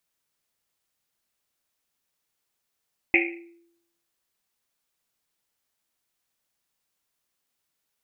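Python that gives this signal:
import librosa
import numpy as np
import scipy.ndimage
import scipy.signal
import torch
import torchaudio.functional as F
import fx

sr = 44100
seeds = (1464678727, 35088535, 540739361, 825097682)

y = fx.risset_drum(sr, seeds[0], length_s=1.1, hz=340.0, decay_s=0.79, noise_hz=2300.0, noise_width_hz=560.0, noise_pct=60)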